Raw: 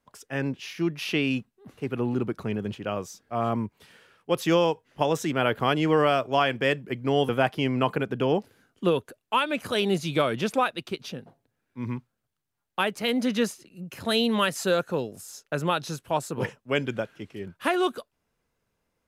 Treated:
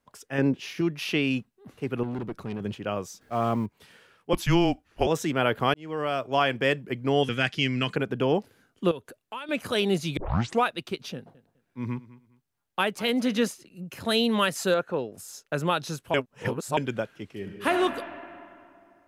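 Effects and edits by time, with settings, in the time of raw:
0.38–0.81 bell 340 Hz +7 dB 2.5 oct
2.03–2.61 tube stage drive 28 dB, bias 0.5
3.21–3.66 G.711 law mismatch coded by mu
4.33–5.07 frequency shift -180 Hz
5.74–6.45 fade in
7.23–7.96 EQ curve 200 Hz 0 dB, 910 Hz -13 dB, 1700 Hz +4 dB, 6900 Hz +9 dB, 14000 Hz -11 dB
8.91–9.49 compressor 2.5:1, threshold -39 dBFS
10.17 tape start 0.46 s
11.14–13.48 feedback echo 0.205 s, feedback 25%, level -19 dB
14.74–15.18 tone controls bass -5 dB, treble -14 dB
16.14–16.77 reverse
17.32–17.72 reverb throw, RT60 2.6 s, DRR 3.5 dB

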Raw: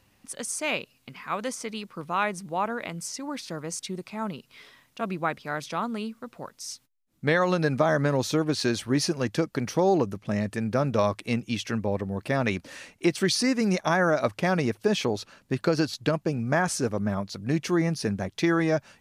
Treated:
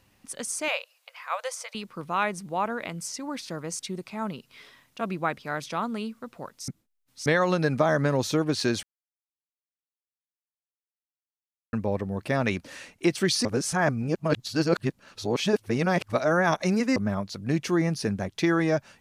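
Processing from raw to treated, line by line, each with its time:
0.68–1.75 brick-wall FIR high-pass 480 Hz
6.68–7.26 reverse
8.83–11.73 mute
13.45–16.96 reverse

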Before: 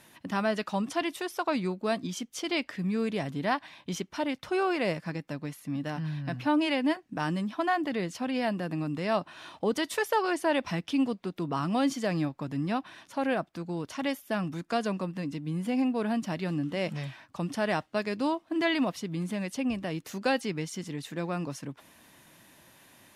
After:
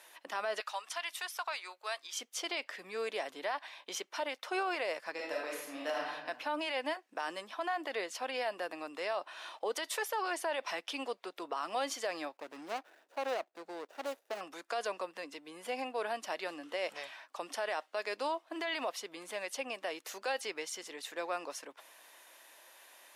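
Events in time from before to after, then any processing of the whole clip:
0.6–2.19 HPF 1100 Hz
5.13–6.12 reverb throw, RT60 0.87 s, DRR -4 dB
12.37–14.41 median filter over 41 samples
whole clip: HPF 470 Hz 24 dB/oct; limiter -26 dBFS

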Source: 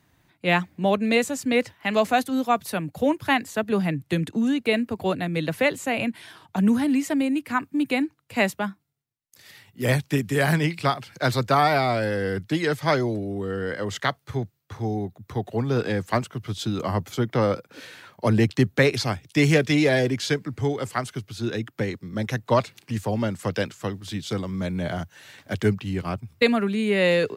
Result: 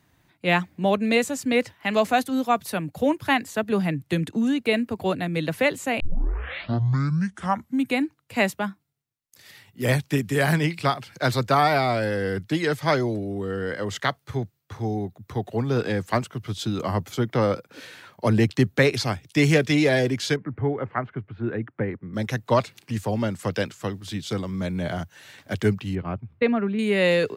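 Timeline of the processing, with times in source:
6 tape start 1.96 s
20.36–22.14 LPF 2000 Hz 24 dB/oct
25.95–26.79 air absorption 490 m

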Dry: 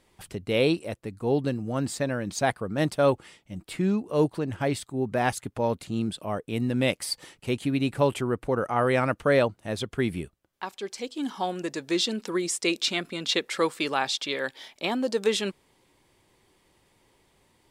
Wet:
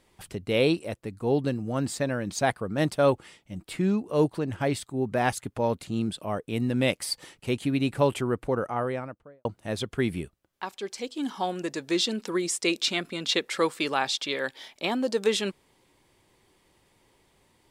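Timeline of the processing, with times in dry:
8.34–9.45 studio fade out

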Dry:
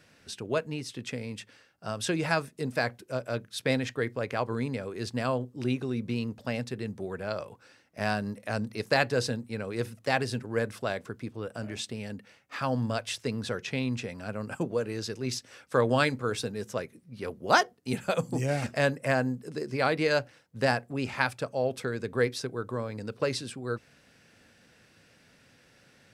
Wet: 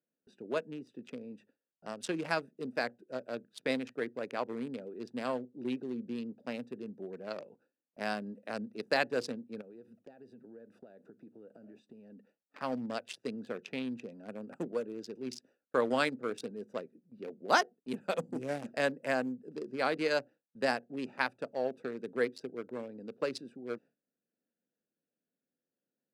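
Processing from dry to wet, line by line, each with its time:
9.61–12.56 compressor 8:1, threshold -40 dBFS
whole clip: Wiener smoothing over 41 samples; HPF 200 Hz 24 dB/oct; gate with hold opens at -50 dBFS; gain -4 dB

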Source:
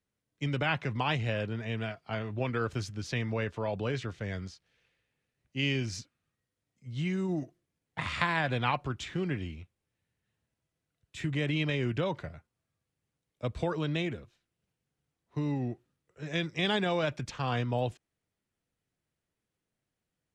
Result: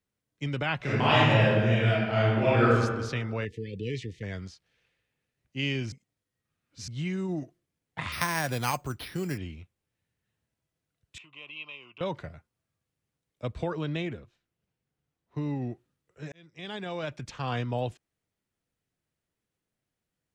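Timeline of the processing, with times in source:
0.77–2.75 reverb throw, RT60 1.4 s, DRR -10 dB
3.45–4.23 brick-wall FIR band-stop 510–1700 Hz
5.92–6.88 reverse
8.12–9.38 careless resampling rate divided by 6×, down none, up hold
11.18–12.01 double band-pass 1700 Hz, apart 1.3 oct
13.52–15.62 high shelf 4300 Hz -6 dB
16.32–17.5 fade in

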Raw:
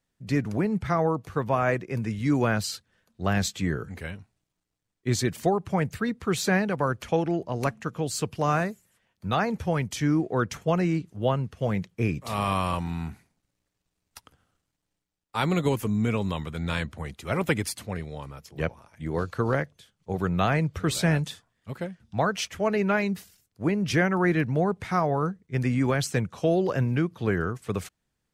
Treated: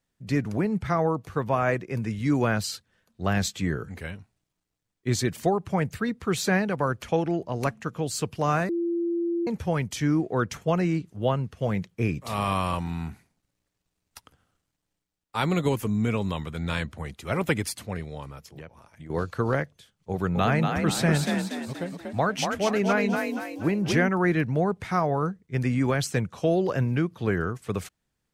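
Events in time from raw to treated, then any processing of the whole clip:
8.69–9.47 bleep 341 Hz -23.5 dBFS
18.49–19.1 compressor, threshold -39 dBFS
20.11–24.09 frequency-shifting echo 0.238 s, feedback 44%, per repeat +41 Hz, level -4.5 dB

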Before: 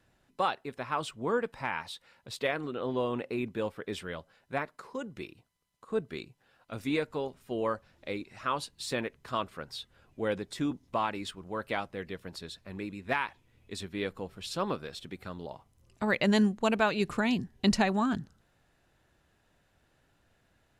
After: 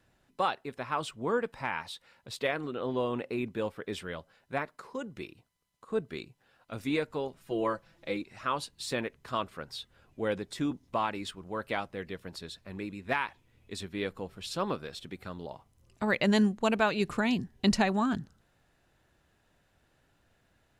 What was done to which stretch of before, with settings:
7.37–8.22 comb 6 ms, depth 67%

